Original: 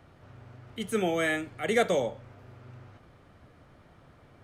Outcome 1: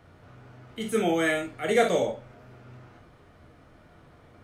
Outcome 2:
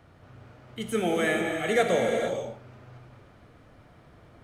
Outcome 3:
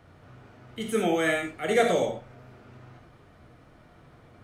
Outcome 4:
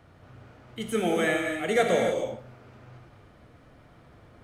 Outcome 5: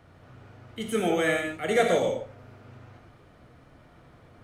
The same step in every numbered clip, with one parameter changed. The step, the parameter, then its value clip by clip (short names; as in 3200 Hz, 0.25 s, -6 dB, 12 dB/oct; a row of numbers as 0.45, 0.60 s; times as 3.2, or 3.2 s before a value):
non-linear reverb, gate: 80, 500, 120, 330, 180 ms